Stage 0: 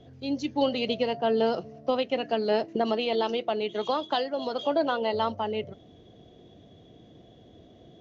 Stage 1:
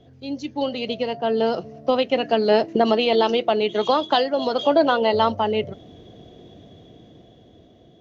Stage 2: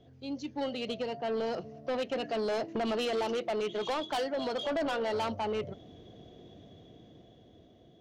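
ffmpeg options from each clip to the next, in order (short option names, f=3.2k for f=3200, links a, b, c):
-af "dynaudnorm=f=670:g=5:m=8.5dB"
-af "asoftclip=type=tanh:threshold=-20.5dB,volume=-7dB"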